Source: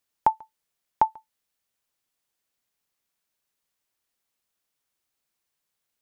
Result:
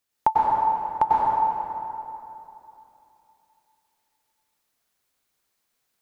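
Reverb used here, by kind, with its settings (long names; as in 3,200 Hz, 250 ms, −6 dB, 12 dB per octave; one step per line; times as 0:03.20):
dense smooth reverb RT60 3 s, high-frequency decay 0.65×, pre-delay 85 ms, DRR −6 dB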